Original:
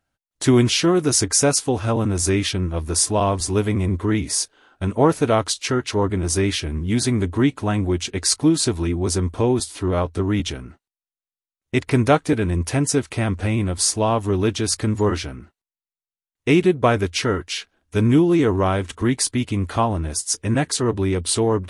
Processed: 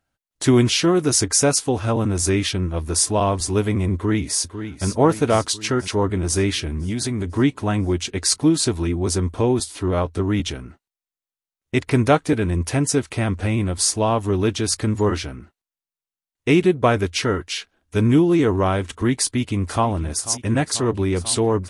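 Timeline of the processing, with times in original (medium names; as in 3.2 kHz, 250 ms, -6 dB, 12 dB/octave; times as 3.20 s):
3.94–4.87 s: echo throw 500 ms, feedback 60%, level -10 dB
6.61–7.37 s: compression, threshold -20 dBFS
19.16–19.88 s: echo throw 490 ms, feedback 85%, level -16 dB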